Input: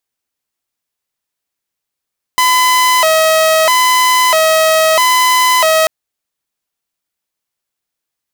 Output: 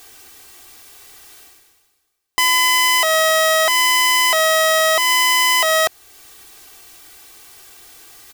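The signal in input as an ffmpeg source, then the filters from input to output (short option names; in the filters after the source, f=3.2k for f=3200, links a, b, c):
-f lavfi -i "aevalsrc='0.531*(2*mod((823.5*t+186.5/0.77*(0.5-abs(mod(0.77*t,1)-0.5))),1)-1)':d=3.49:s=44100"
-af "aecho=1:1:2.6:0.76,areverse,acompressor=mode=upward:threshold=-16dB:ratio=2.5,areverse,alimiter=limit=-8.5dB:level=0:latency=1:release=420"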